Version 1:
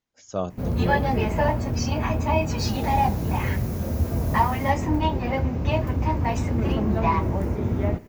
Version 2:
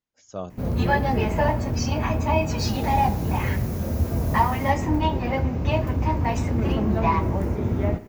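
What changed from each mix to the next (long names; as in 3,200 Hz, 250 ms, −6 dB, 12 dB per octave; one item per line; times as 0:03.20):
speech −5.5 dB
background: send +6.5 dB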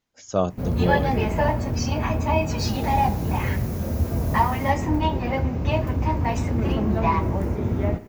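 speech +11.0 dB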